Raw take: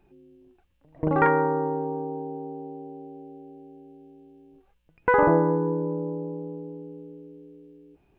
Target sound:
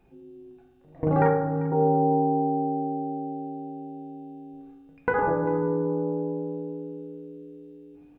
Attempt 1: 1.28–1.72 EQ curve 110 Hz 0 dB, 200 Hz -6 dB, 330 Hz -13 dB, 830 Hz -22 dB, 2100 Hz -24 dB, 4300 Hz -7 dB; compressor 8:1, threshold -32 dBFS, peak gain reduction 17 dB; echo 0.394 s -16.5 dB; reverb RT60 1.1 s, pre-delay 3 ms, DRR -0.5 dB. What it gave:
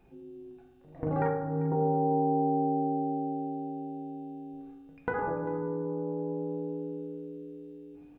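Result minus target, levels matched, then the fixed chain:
compressor: peak gain reduction +8 dB
1.28–1.72 EQ curve 110 Hz 0 dB, 200 Hz -6 dB, 330 Hz -13 dB, 830 Hz -22 dB, 2100 Hz -24 dB, 4300 Hz -7 dB; compressor 8:1, threshold -23 dBFS, peak gain reduction 9 dB; echo 0.394 s -16.5 dB; reverb RT60 1.1 s, pre-delay 3 ms, DRR -0.5 dB

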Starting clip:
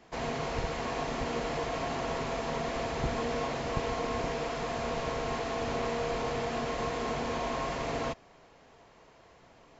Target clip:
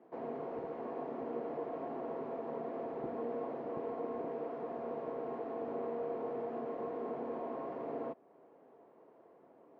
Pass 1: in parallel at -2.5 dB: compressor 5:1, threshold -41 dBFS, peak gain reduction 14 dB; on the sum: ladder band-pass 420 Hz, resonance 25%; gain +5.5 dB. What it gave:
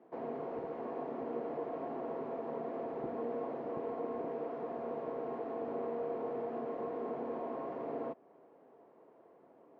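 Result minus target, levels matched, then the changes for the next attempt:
compressor: peak gain reduction -5 dB
change: compressor 5:1, threshold -47.5 dBFS, peak gain reduction 19.5 dB

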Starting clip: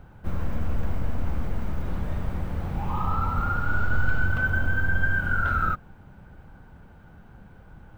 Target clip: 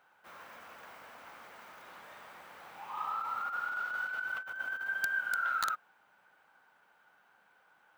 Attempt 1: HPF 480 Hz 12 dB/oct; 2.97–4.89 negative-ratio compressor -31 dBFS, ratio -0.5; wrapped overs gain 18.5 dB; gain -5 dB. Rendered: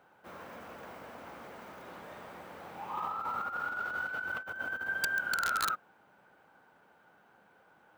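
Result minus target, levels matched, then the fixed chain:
500 Hz band +8.5 dB
HPF 1000 Hz 12 dB/oct; 2.97–4.89 negative-ratio compressor -31 dBFS, ratio -0.5; wrapped overs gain 18.5 dB; gain -5 dB

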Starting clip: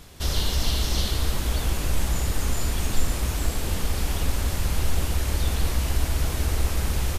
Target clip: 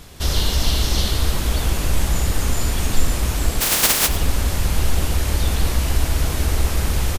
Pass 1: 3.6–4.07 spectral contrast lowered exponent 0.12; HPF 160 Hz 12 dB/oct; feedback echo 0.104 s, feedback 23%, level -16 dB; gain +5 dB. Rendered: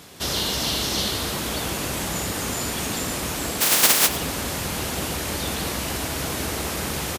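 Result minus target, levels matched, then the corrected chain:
125 Hz band -8.5 dB
3.6–4.07 spectral contrast lowered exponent 0.12; feedback echo 0.104 s, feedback 23%, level -16 dB; gain +5 dB

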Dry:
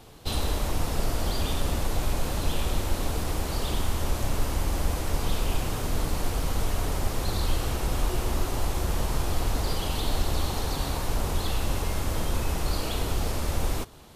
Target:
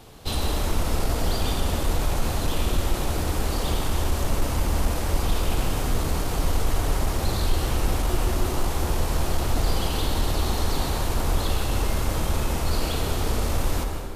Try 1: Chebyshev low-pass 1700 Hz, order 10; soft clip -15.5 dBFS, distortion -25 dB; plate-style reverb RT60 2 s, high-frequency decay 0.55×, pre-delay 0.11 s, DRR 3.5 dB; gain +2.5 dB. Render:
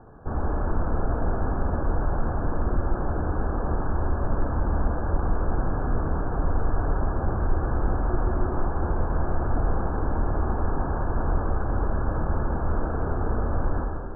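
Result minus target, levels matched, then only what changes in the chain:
2000 Hz band -3.0 dB
remove: Chebyshev low-pass 1700 Hz, order 10

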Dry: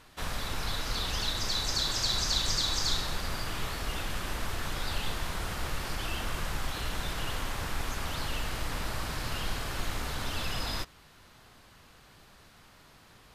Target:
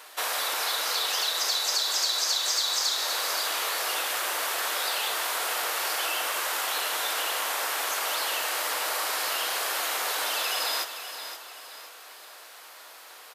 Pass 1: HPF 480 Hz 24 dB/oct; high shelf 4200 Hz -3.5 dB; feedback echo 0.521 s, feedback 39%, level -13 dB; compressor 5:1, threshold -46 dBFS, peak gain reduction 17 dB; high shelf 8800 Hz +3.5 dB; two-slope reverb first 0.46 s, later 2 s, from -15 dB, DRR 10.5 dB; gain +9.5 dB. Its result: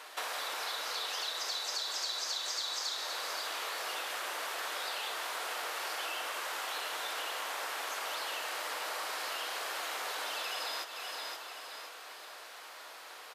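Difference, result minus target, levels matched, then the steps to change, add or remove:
compressor: peak gain reduction +7.5 dB; 8000 Hz band -2.5 dB
change: compressor 5:1, threshold -36.5 dBFS, peak gain reduction 9 dB; change: second high shelf 8800 Hz +15 dB

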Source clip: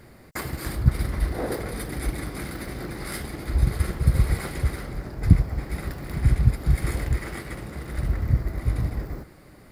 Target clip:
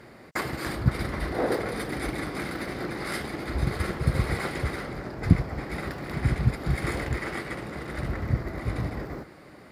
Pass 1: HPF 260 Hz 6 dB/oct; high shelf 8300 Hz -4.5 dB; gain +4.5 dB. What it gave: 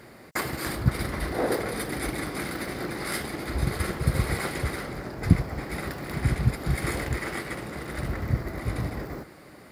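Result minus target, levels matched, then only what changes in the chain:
8000 Hz band +6.0 dB
change: high shelf 8300 Hz -16 dB

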